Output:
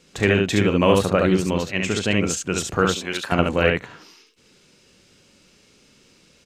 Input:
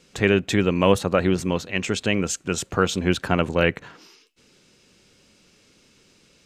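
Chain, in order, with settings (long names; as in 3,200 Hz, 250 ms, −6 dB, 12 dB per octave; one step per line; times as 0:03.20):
0:02.90–0:03.32: high-pass filter 1,000 Hz 6 dB per octave
ambience of single reflections 38 ms −10 dB, 69 ms −3 dB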